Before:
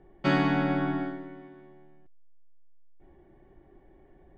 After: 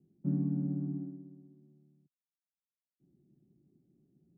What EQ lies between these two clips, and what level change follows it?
Butterworth band-pass 180 Hz, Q 1.5; -2.0 dB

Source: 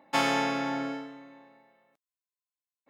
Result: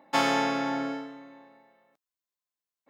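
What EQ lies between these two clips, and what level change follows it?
fifteen-band graphic EQ 100 Hz -9 dB, 2.5 kHz -3 dB, 10 kHz -4 dB; +2.0 dB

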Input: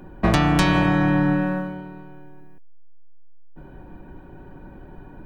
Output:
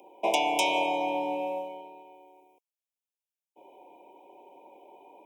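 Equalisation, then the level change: high-pass 460 Hz 24 dB/octave; Chebyshev band-stop 1–2.2 kHz, order 5; Butterworth band-stop 4.3 kHz, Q 3.4; 0.0 dB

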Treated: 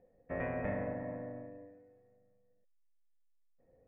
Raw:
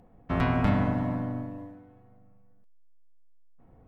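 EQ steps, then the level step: dynamic bell 950 Hz, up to +4 dB, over -44 dBFS, Q 0.88; cascade formant filter e; distance through air 93 m; +3.0 dB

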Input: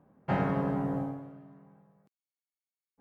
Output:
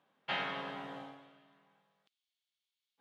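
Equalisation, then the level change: band-pass filter 3.4 kHz, Q 3.8; +16.5 dB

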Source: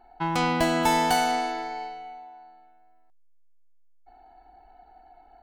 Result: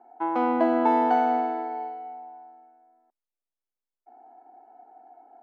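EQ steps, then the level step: elliptic high-pass 240 Hz, stop band 40 dB; low-pass 1 kHz 12 dB/octave; +3.5 dB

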